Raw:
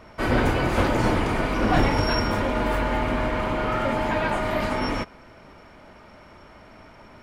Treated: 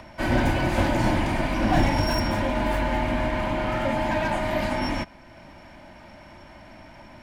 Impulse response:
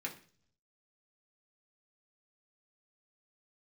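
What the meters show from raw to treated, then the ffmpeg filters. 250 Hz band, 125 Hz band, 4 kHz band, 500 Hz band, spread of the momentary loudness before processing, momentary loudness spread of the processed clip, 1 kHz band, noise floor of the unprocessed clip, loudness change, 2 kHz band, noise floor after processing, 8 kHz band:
0.0 dB, 0.0 dB, -1.0 dB, -1.5 dB, 4 LU, 4 LU, -1.0 dB, -49 dBFS, -1.0 dB, -1.0 dB, -47 dBFS, +0.5 dB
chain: -filter_complex "[0:a]superequalizer=7b=0.282:10b=0.447,acrossover=split=150|1100[s0][s1][s2];[s2]asoftclip=type=hard:threshold=0.0398[s3];[s0][s1][s3]amix=inputs=3:normalize=0,acompressor=mode=upward:threshold=0.01:ratio=2.5"

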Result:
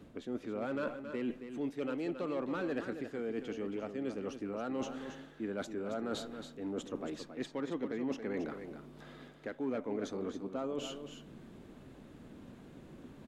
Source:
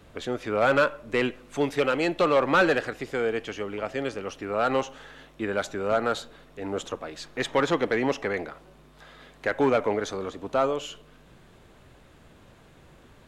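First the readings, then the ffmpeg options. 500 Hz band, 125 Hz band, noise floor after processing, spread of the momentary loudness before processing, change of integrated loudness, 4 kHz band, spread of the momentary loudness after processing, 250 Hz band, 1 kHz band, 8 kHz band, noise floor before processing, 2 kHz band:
-13.0 dB, -10.5 dB, -55 dBFS, 13 LU, -12.5 dB, -13.5 dB, 16 LU, -6.5 dB, -17.5 dB, -11.0 dB, -54 dBFS, -18.5 dB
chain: -af "equalizer=f=250:w=0.9:g=14.5,areverse,acompressor=threshold=0.0316:ratio=4,areverse,aecho=1:1:274:0.355,volume=0.447"

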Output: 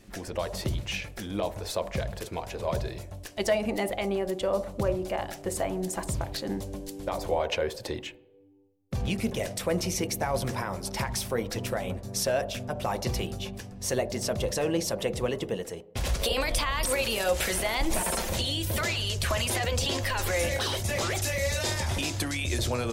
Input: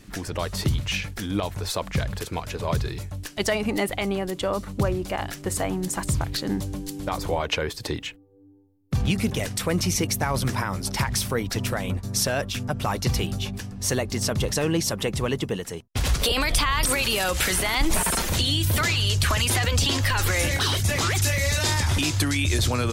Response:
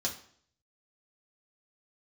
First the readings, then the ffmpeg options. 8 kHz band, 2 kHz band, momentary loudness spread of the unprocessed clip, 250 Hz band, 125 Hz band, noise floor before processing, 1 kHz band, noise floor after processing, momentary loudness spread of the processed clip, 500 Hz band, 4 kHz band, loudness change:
-6.0 dB, -6.0 dB, 9 LU, -5.5 dB, -8.0 dB, -44 dBFS, -4.0 dB, -46 dBFS, 8 LU, 0.0 dB, -6.0 dB, -5.0 dB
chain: -filter_complex "[0:a]asplit=2[s0][s1];[s1]bandpass=f=610:t=q:w=3.1:csg=0[s2];[1:a]atrim=start_sample=2205,asetrate=29547,aresample=44100,lowshelf=f=290:g=10[s3];[s2][s3]afir=irnorm=-1:irlink=0,volume=0.631[s4];[s0][s4]amix=inputs=2:normalize=0,volume=0.501"

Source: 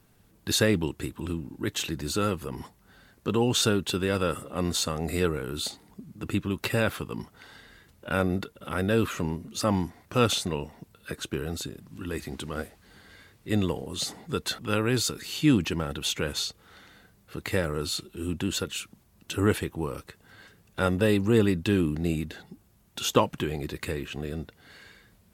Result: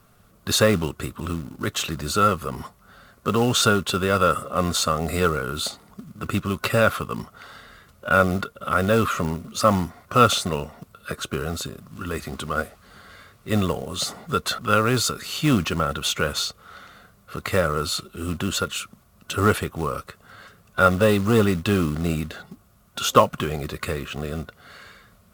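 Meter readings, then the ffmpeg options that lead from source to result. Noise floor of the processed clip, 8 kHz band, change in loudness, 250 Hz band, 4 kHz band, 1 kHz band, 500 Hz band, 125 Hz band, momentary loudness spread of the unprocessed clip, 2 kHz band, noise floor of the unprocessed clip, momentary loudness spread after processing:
-56 dBFS, +4.5 dB, +5.5 dB, +2.5 dB, +4.5 dB, +11.5 dB, +5.5 dB, +4.0 dB, 15 LU, +7.0 dB, -61 dBFS, 15 LU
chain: -af "acontrast=64,acrusher=bits=5:mode=log:mix=0:aa=0.000001,superequalizer=6b=0.562:8b=1.78:10b=2.82,volume=0.794"

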